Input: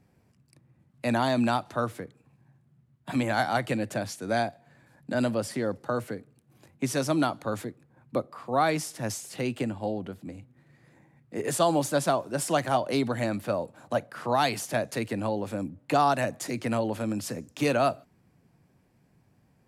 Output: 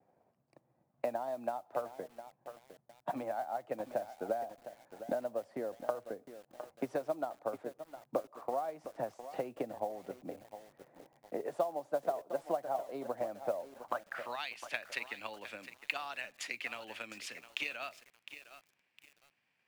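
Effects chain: gate with hold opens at -59 dBFS; band-pass sweep 680 Hz -> 2.6 kHz, 13.72–14.27 s; compression 3:1, threshold -45 dBFS, peak gain reduction 17.5 dB; transient shaper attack +8 dB, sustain -1 dB; modulation noise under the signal 27 dB; bit-crushed delay 709 ms, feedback 35%, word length 9-bit, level -11.5 dB; trim +3.5 dB

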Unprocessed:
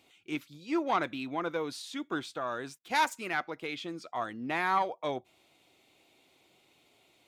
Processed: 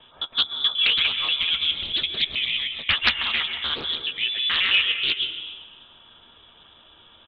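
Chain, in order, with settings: time reversed locally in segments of 107 ms; high-pass 130 Hz; bass shelf 290 Hz +11.5 dB; band-stop 2.2 kHz, Q 21; in parallel at +2 dB: compression, threshold -45 dBFS, peak gain reduction 21.5 dB; on the sum: doubling 13 ms -9.5 dB; plate-style reverb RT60 1.3 s, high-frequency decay 0.75×, pre-delay 120 ms, DRR 6.5 dB; frequency inversion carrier 3.7 kHz; loudspeaker Doppler distortion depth 0.49 ms; trim +4.5 dB

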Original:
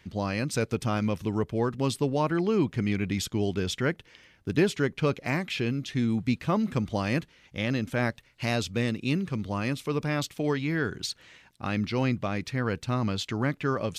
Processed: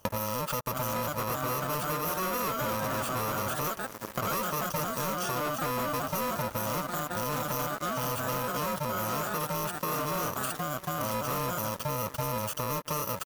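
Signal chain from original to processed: bit-reversed sample order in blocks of 64 samples; high-order bell 730 Hz +12 dB; feedback delay 695 ms, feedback 59%, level -23 dB; tempo 0.97×; ever faster or slower copies 680 ms, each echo +3 st, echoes 2, each echo -6 dB; speed mistake 44.1 kHz file played as 48 kHz; dynamic bell 1.3 kHz, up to +5 dB, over -44 dBFS, Q 4.4; waveshaping leveller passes 5; compression 12:1, threshold -39 dBFS, peak gain reduction 30.5 dB; trim +8 dB

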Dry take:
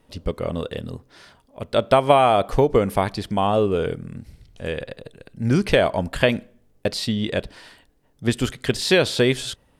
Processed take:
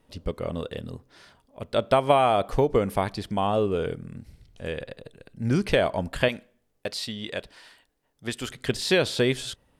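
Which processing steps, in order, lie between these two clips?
6.28–8.51 s: bass shelf 430 Hz -10.5 dB; trim -4.5 dB

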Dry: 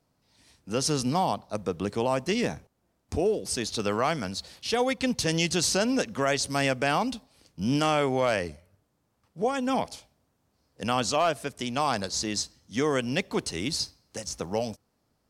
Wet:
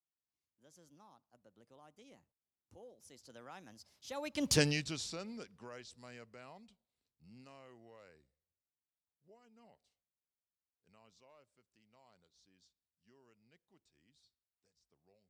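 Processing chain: Doppler pass-by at 4.56 s, 45 m/s, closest 2.7 m

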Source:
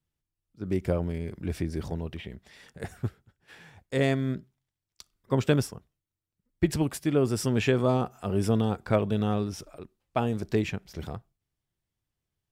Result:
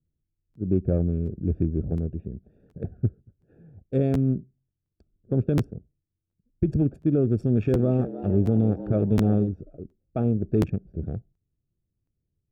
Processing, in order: local Wiener filter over 41 samples; peak limiter -18.5 dBFS, peak gain reduction 9 dB; boxcar filter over 44 samples; 7.36–9.49 s: frequency-shifting echo 308 ms, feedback 43%, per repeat +91 Hz, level -14 dB; crackling interface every 0.72 s, samples 512, repeat, from 0.53 s; trim +7.5 dB

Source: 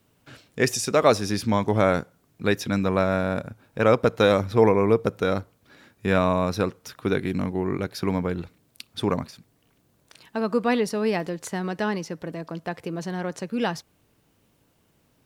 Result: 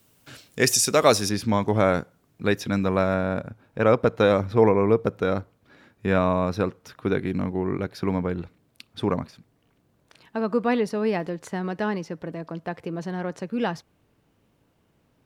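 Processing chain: treble shelf 4 kHz +10 dB, from 1.29 s -3.5 dB, from 3.14 s -10 dB

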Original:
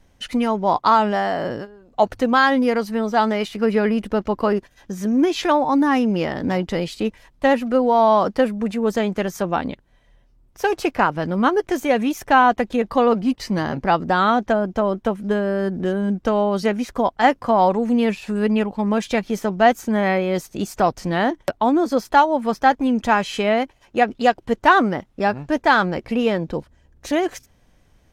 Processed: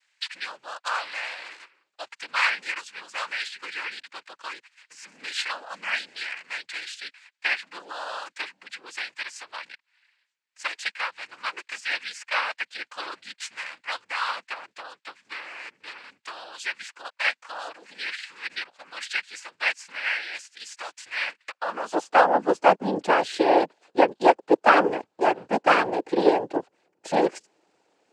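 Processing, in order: high-pass sweep 2.1 kHz -> 440 Hz, 21.46–22.18 s; noise-vocoded speech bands 8; trim -4.5 dB

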